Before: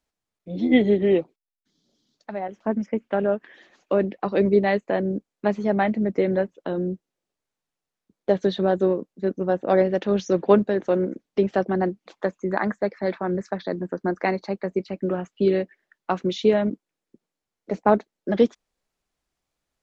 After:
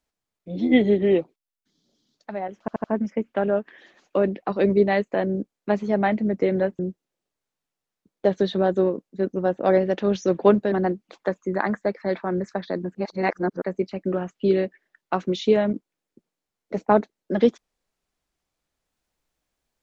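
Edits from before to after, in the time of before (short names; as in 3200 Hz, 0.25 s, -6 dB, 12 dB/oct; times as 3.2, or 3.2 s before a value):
2.6 stutter 0.08 s, 4 plays
6.55–6.83 cut
10.76–11.69 cut
13.92–14.59 reverse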